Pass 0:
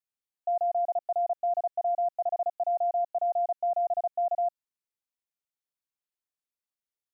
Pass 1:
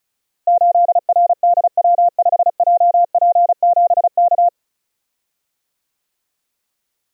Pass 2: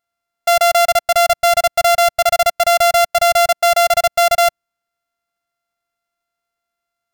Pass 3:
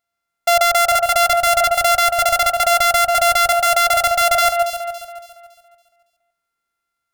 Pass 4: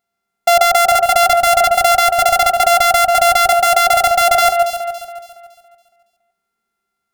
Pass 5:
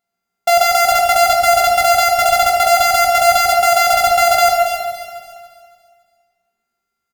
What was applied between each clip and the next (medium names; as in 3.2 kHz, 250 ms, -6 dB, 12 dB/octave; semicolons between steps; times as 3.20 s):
dynamic bell 510 Hz, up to +8 dB, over -45 dBFS, Q 1.7; in parallel at -2 dB: compressor with a negative ratio -31 dBFS, ratio -1; on the sum: trim +9 dB
sorted samples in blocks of 64 samples; upward expansion 1.5:1, over -21 dBFS
de-hum 52.57 Hz, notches 32; on a send: echo whose repeats swap between lows and highs 140 ms, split 2.4 kHz, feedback 61%, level -4.5 dB
small resonant body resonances 210/390/750 Hz, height 15 dB, ringing for 85 ms; trim +1.5 dB
doubling 17 ms -7 dB; on a send at -3 dB: reverberation RT60 1.6 s, pre-delay 17 ms; on the sum: trim -3 dB